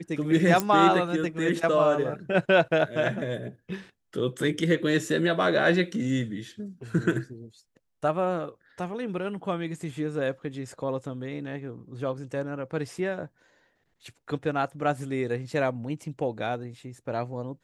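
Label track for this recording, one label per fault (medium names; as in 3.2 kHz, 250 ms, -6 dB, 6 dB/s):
0.600000	0.600000	pop -10 dBFS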